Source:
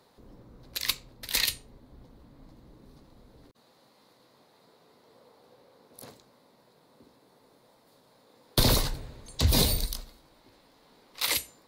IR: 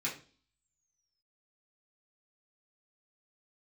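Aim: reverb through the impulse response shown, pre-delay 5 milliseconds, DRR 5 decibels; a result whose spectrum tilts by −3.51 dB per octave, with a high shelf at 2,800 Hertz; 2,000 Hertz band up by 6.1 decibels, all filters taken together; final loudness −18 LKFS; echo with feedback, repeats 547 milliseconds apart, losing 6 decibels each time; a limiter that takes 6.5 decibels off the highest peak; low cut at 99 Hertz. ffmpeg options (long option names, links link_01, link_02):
-filter_complex "[0:a]highpass=99,equalizer=frequency=2000:width_type=o:gain=9,highshelf=frequency=2800:gain=-4.5,alimiter=limit=-17dB:level=0:latency=1,aecho=1:1:547|1094|1641|2188|2735|3282:0.501|0.251|0.125|0.0626|0.0313|0.0157,asplit=2[link_01][link_02];[1:a]atrim=start_sample=2205,adelay=5[link_03];[link_02][link_03]afir=irnorm=-1:irlink=0,volume=-9dB[link_04];[link_01][link_04]amix=inputs=2:normalize=0,volume=13dB"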